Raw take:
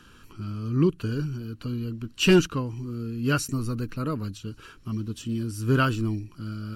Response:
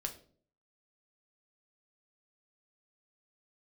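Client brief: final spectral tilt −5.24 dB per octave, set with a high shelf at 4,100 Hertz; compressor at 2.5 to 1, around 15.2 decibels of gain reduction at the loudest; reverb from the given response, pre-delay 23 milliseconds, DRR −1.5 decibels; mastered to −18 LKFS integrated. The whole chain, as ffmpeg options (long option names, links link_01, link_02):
-filter_complex "[0:a]highshelf=frequency=4100:gain=5.5,acompressor=threshold=-37dB:ratio=2.5,asplit=2[link_01][link_02];[1:a]atrim=start_sample=2205,adelay=23[link_03];[link_02][link_03]afir=irnorm=-1:irlink=0,volume=2dB[link_04];[link_01][link_04]amix=inputs=2:normalize=0,volume=15.5dB"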